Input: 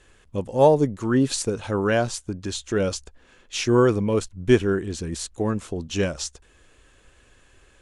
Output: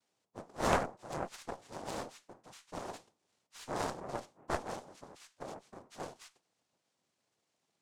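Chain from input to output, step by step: resonator 460 Hz, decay 0.35 s, harmonics odd, mix 80%; noise vocoder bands 2; added harmonics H 3 -6 dB, 4 -9 dB, 5 -13 dB, 8 -29 dB, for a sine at -10 dBFS; dynamic EQ 650 Hz, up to +5 dB, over -45 dBFS, Q 0.94; gain -6.5 dB

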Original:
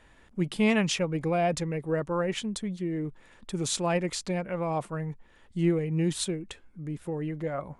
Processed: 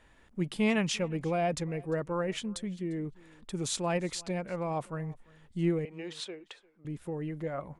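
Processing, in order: 5.85–6.85 three-band isolator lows -24 dB, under 390 Hz, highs -18 dB, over 5400 Hz; on a send: echo 0.349 s -24 dB; on the sum: gain -3.5 dB

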